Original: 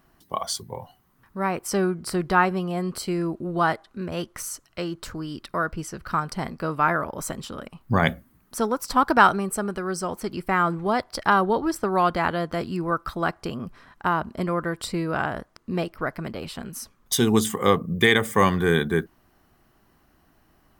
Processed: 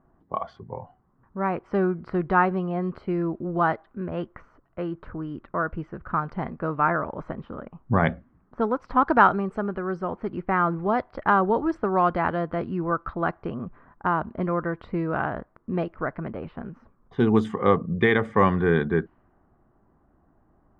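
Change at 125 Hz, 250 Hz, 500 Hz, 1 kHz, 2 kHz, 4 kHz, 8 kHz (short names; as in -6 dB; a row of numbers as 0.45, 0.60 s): 0.0 dB, 0.0 dB, 0.0 dB, -0.5 dB, -3.0 dB, under -10 dB, under -30 dB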